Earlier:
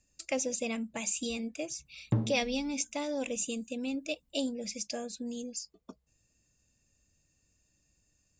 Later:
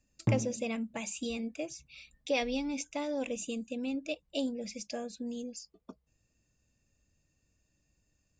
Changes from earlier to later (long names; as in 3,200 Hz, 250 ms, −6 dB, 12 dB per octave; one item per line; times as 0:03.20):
background: entry −1.85 s
master: add high-shelf EQ 5,500 Hz −11.5 dB